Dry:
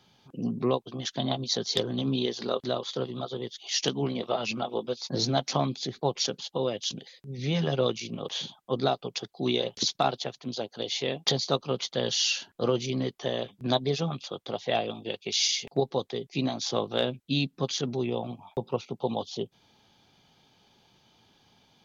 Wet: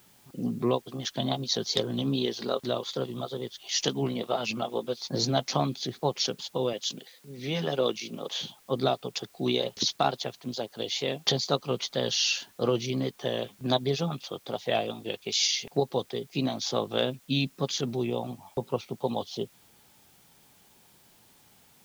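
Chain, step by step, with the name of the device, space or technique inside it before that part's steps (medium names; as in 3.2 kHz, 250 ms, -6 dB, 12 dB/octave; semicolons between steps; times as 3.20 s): plain cassette with noise reduction switched in (tape noise reduction on one side only decoder only; wow and flutter; white noise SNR 30 dB); 6.73–8.43 s: high-pass 210 Hz 12 dB/octave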